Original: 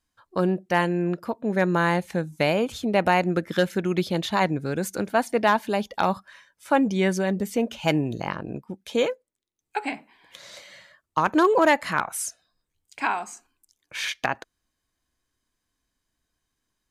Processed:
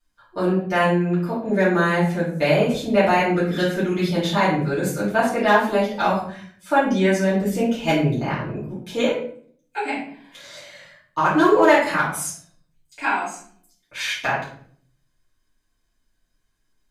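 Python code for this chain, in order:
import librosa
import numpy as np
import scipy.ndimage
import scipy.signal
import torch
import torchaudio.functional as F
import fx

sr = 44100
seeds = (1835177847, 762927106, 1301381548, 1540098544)

y = fx.room_shoebox(x, sr, seeds[0], volume_m3=67.0, walls='mixed', distance_m=2.6)
y = y * librosa.db_to_amplitude(-7.5)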